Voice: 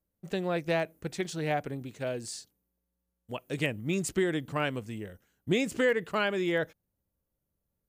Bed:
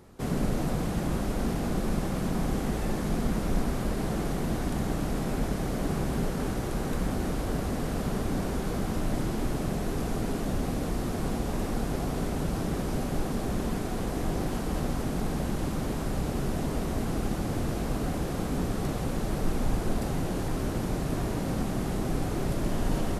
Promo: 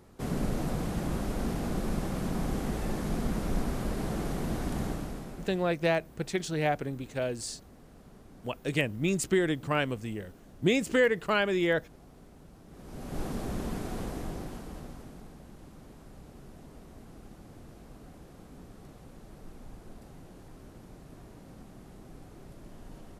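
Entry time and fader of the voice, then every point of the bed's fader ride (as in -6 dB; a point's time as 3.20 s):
5.15 s, +2.0 dB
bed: 4.85 s -3 dB
5.81 s -23.5 dB
12.65 s -23.5 dB
13.21 s -4.5 dB
14.01 s -4.5 dB
15.38 s -20 dB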